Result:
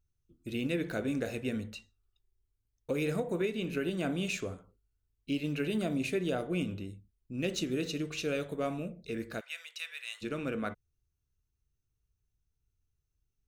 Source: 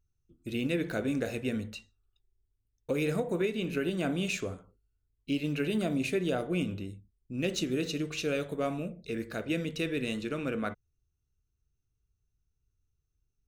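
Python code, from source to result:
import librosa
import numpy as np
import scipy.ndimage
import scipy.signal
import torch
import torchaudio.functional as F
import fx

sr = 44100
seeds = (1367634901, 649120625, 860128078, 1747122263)

y = fx.bessel_highpass(x, sr, hz=1400.0, order=6, at=(9.39, 10.21), fade=0.02)
y = F.gain(torch.from_numpy(y), -2.0).numpy()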